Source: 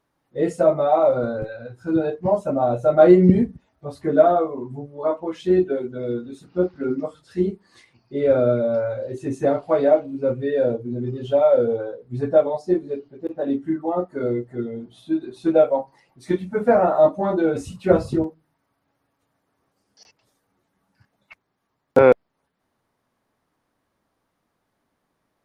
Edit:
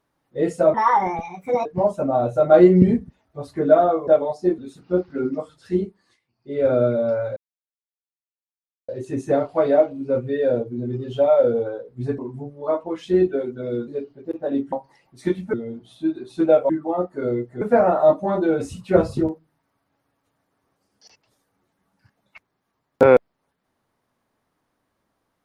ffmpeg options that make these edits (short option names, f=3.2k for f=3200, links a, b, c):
-filter_complex "[0:a]asplit=14[a][b][c][d][e][f][g][h][i][j][k][l][m][n];[a]atrim=end=0.744[o];[b]atrim=start=0.74:end=2.13,asetpts=PTS-STARTPTS,asetrate=67032,aresample=44100,atrim=end_sample=40328,asetpts=PTS-STARTPTS[p];[c]atrim=start=2.126:end=4.552[q];[d]atrim=start=12.318:end=12.832[r];[e]atrim=start=6.238:end=7.84,asetpts=PTS-STARTPTS,afade=t=out:st=1.172:d=0.43:silence=0.133352[s];[f]atrim=start=7.84:end=7.97,asetpts=PTS-STARTPTS,volume=-17.5dB[t];[g]atrim=start=7.97:end=9.02,asetpts=PTS-STARTPTS,afade=t=in:d=0.43:silence=0.133352,afade=t=out:st=1.046:d=0.004:c=hsin,apad=pad_dur=1.52[u];[h]atrim=start=9.02:end=12.322,asetpts=PTS-STARTPTS,afade=t=in:d=0.004:c=hsin[v];[i]atrim=start=4.548:end=6.242[w];[j]atrim=start=12.828:end=13.682[x];[k]atrim=start=15.758:end=16.572[y];[l]atrim=start=14.598:end=15.762[z];[m]atrim=start=13.678:end=14.602[aa];[n]atrim=start=16.568[ab];[o][p]acrossfade=d=0.004:c1=hsin:c2=hsin[ac];[ac][q]acrossfade=d=0.004:c1=hsin:c2=hsin[ad];[ad][r]acrossfade=d=0.004:c1=hsin:c2=hsin[ae];[s][t][u][v]concat=n=4:v=0:a=1[af];[ae][af]acrossfade=d=0.004:c1=hsin:c2=hsin[ag];[ag][w]acrossfade=d=0.004:c1=hsin:c2=hsin[ah];[ah][x]acrossfade=d=0.004:c1=hsin:c2=hsin[ai];[ai][y]acrossfade=d=0.004:c1=hsin:c2=hsin[aj];[aj][z]acrossfade=d=0.004:c1=hsin:c2=hsin[ak];[ak][aa]acrossfade=d=0.004:c1=hsin:c2=hsin[al];[al][ab]acrossfade=d=0.004:c1=hsin:c2=hsin"